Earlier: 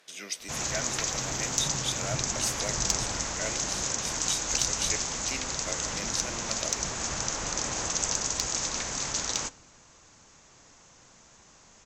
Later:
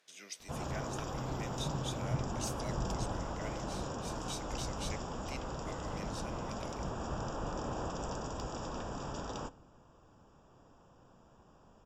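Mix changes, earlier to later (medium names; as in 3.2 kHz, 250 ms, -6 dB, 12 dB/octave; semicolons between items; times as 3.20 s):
speech -11.0 dB; background: add boxcar filter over 21 samples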